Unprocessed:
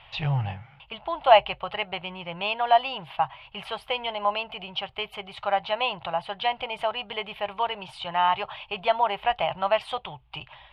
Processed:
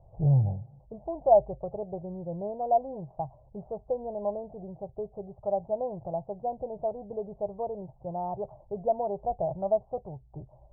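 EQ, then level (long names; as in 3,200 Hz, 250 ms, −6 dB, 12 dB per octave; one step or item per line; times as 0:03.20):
Butterworth low-pass 630 Hz 36 dB per octave
high-frequency loss of the air 430 metres
+4.0 dB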